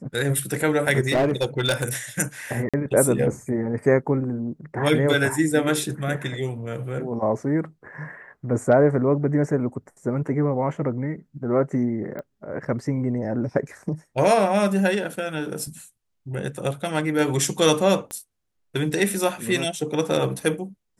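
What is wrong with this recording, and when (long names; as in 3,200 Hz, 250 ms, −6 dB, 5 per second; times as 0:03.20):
0:01.07–0:01.88: clipping −16 dBFS
0:02.69–0:02.74: drop-out 46 ms
0:12.19: click −22 dBFS
0:18.11: click −19 dBFS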